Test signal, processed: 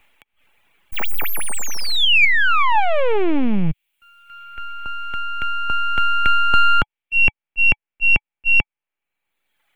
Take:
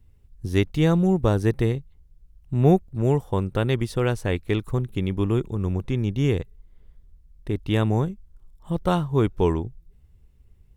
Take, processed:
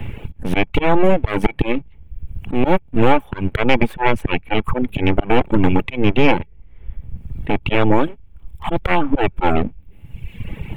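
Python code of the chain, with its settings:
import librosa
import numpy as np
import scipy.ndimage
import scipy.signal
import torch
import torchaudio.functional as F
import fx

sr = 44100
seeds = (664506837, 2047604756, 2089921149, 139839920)

p1 = np.abs(x)
p2 = fx.high_shelf_res(p1, sr, hz=3700.0, db=-12.0, q=3.0)
p3 = fx.rider(p2, sr, range_db=4, speed_s=0.5)
p4 = p2 + (p3 * 10.0 ** (2.0 / 20.0))
p5 = fx.auto_swell(p4, sr, attack_ms=220.0)
p6 = fx.small_body(p5, sr, hz=(850.0, 2300.0, 3300.0), ring_ms=55, db=8)
p7 = fx.dereverb_blind(p6, sr, rt60_s=1.1)
p8 = 10.0 ** (-5.0 / 20.0) * np.tanh(p7 / 10.0 ** (-5.0 / 20.0))
p9 = fx.band_squash(p8, sr, depth_pct=70)
y = p9 * 10.0 ** (8.0 / 20.0)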